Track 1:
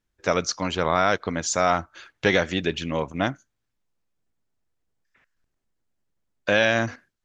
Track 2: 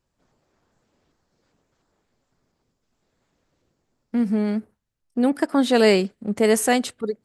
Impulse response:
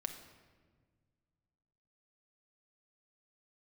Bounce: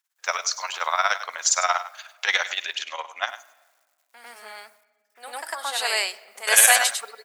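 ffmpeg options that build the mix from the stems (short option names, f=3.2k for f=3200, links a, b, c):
-filter_complex "[0:a]tremolo=f=17:d=0.79,volume=-4dB,asplit=4[a][b][c][d];[b]volume=-8.5dB[e];[c]volume=-11.5dB[f];[1:a]acrusher=bits=10:mix=0:aa=0.000001,volume=-4dB,asplit=3[g][h][i];[g]atrim=end=2.75,asetpts=PTS-STARTPTS,afade=t=out:st=2.746:d=0.004:c=hsin[j];[h]atrim=start=2.75:end=3.27,asetpts=PTS-STARTPTS,volume=0[k];[i]atrim=start=3.27,asetpts=PTS-STARTPTS,afade=t=in:d=0.004:c=hsin[l];[j][k][l]concat=n=3:v=0:a=1,asplit=3[m][n][o];[n]volume=-8dB[p];[o]volume=-4dB[q];[d]apad=whole_len=319589[r];[m][r]sidechaingate=range=-33dB:threshold=-58dB:ratio=16:detection=peak[s];[2:a]atrim=start_sample=2205[t];[e][p]amix=inputs=2:normalize=0[u];[u][t]afir=irnorm=-1:irlink=0[v];[f][q]amix=inputs=2:normalize=0,aecho=0:1:100:1[w];[a][s][v][w]amix=inputs=4:normalize=0,highpass=f=830:w=0.5412,highpass=f=830:w=1.3066,highshelf=f=6.8k:g=11.5,acontrast=59"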